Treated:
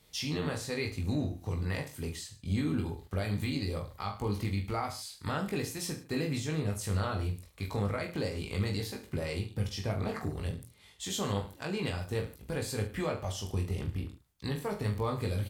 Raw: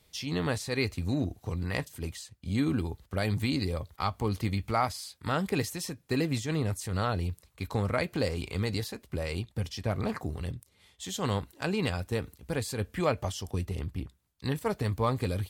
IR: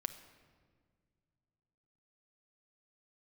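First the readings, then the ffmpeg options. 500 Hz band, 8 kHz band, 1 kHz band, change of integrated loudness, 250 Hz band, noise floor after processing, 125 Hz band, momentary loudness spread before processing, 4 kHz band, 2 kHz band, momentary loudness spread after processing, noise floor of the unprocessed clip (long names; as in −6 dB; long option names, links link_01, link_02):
−3.0 dB, −0.5 dB, −5.0 dB, −2.5 dB, −3.0 dB, −58 dBFS, −1.5 dB, 8 LU, −2.0 dB, −3.5 dB, 6 LU, −67 dBFS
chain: -af "alimiter=level_in=1dB:limit=-24dB:level=0:latency=1:release=359,volume=-1dB,aecho=1:1:20|44|72.8|107.4|148.8:0.631|0.398|0.251|0.158|0.1"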